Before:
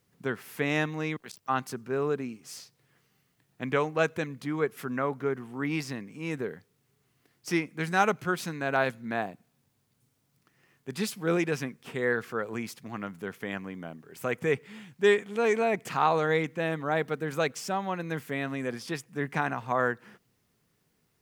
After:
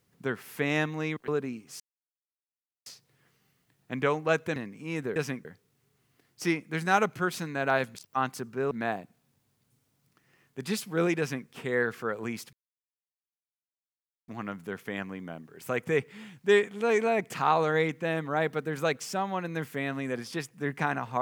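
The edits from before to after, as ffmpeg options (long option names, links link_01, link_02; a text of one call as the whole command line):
ffmpeg -i in.wav -filter_complex "[0:a]asplit=9[link_01][link_02][link_03][link_04][link_05][link_06][link_07][link_08][link_09];[link_01]atrim=end=1.282[link_10];[link_02]atrim=start=2.038:end=2.56,asetpts=PTS-STARTPTS,afade=type=out:start_time=0.518:duration=0.004:curve=hsin,apad=pad_dur=1.06[link_11];[link_03]atrim=start=2.56:end=4.262,asetpts=PTS-STARTPTS,afade=type=in:duration=0.004:curve=hsin[link_12];[link_04]atrim=start=5.908:end=6.512[link_13];[link_05]atrim=start=11.488:end=11.782[link_14];[link_06]atrim=start=6.508:end=9.012[link_15];[link_07]atrim=start=1.278:end=2.042[link_16];[link_08]atrim=start=9.008:end=12.83,asetpts=PTS-STARTPTS,afade=type=out:start_time=3.818:duration=0.004:curve=hsin,apad=pad_dur=1.75[link_17];[link_09]atrim=start=12.83,asetpts=PTS-STARTPTS,afade=type=in:duration=0.004:curve=hsin[link_18];[link_11][link_12]concat=n=2:v=0:a=1[link_19];[link_10][link_19]acrossfade=duration=0.004:curve1=hsin:curve2=hsin[link_20];[link_20][link_13]acrossfade=duration=0.004:curve1=hsin:curve2=hsin[link_21];[link_21][link_14]acrossfade=duration=0.004:curve1=hsin:curve2=hsin[link_22];[link_22][link_15]acrossfade=duration=0.004:curve1=hsin:curve2=hsin[link_23];[link_23][link_16]acrossfade=duration=0.004:curve1=hsin:curve2=hsin[link_24];[link_17][link_18]concat=n=2:v=0:a=1[link_25];[link_24][link_25]acrossfade=duration=0.004:curve1=hsin:curve2=hsin" out.wav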